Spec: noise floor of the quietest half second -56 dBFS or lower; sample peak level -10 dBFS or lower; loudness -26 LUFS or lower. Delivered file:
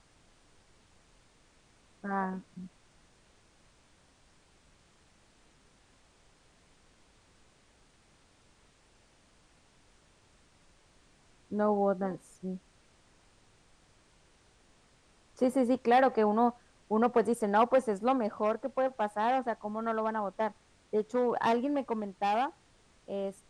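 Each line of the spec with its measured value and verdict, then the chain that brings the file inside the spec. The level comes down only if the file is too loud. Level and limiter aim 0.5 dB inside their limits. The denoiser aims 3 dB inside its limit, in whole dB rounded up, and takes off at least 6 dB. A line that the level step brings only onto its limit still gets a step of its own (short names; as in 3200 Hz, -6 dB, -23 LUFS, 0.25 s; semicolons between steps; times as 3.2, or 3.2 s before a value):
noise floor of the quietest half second -64 dBFS: OK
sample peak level -14.5 dBFS: OK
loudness -30.5 LUFS: OK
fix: none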